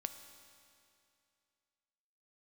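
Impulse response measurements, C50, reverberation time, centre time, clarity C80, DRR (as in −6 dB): 9.0 dB, 2.5 s, 27 ms, 10.0 dB, 8.0 dB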